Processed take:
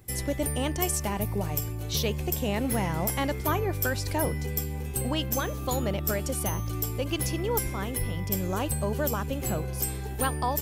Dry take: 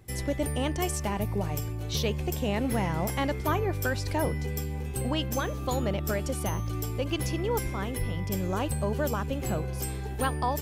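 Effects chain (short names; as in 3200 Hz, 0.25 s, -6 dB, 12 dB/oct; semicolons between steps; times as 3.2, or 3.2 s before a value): high shelf 8400 Hz +11 dB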